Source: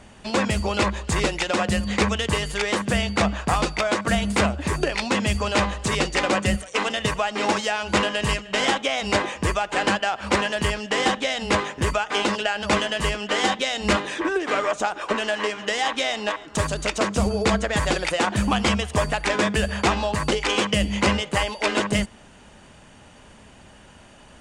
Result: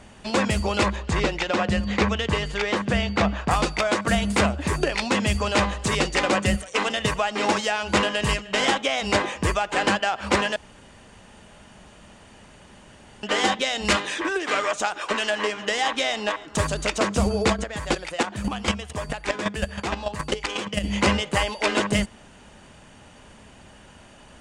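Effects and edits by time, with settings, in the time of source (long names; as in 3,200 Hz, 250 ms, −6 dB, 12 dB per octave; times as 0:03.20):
0:00.96–0:03.51: high-frequency loss of the air 92 metres
0:10.56–0:13.23: fill with room tone
0:13.85–0:15.30: tilt shelving filter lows −4 dB, about 1,300 Hz
0:17.52–0:20.83: square-wave tremolo 2.9 Hz → 9.8 Hz, depth 65%, duty 15%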